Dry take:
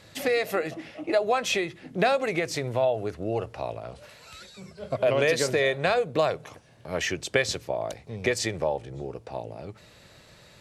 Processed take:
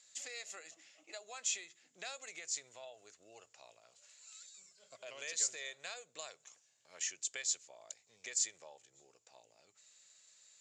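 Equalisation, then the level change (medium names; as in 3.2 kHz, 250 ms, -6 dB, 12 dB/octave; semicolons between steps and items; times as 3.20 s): band-pass filter 7.1 kHz, Q 12; distance through air 94 m; +15.0 dB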